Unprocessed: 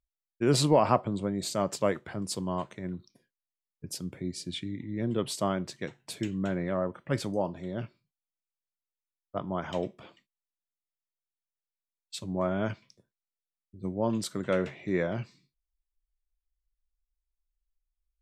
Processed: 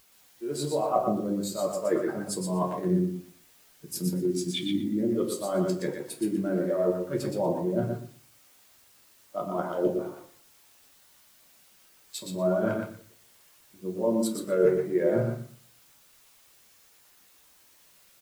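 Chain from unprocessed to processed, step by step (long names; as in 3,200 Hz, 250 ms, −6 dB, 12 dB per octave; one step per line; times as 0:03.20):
adaptive Wiener filter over 15 samples
high-pass filter 240 Hz 12 dB per octave
parametric band 12,000 Hz +15 dB 0.79 octaves
reversed playback
downward compressor 20 to 1, threshold −40 dBFS, peak gain reduction 23.5 dB
reversed playback
rectangular room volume 30 cubic metres, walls mixed, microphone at 0.49 metres
automatic gain control gain up to 8 dB
background noise white −50 dBFS
on a send: repeating echo 120 ms, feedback 28%, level −3.5 dB
on the sum: every bin expanded away from the loudest bin 1.5 to 1
level +6 dB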